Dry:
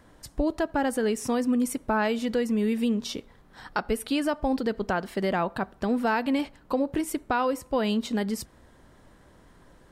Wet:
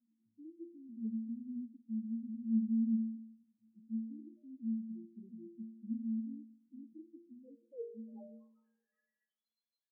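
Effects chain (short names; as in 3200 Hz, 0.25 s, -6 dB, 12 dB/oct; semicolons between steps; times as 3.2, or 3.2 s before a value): band-pass sweep 240 Hz -> 4300 Hz, 7.33–9.52; loudest bins only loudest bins 2; metallic resonator 110 Hz, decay 0.7 s, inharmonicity 0.008; on a send: reverb RT60 1.7 s, pre-delay 8 ms, DRR 21 dB; on the sum: gain +4 dB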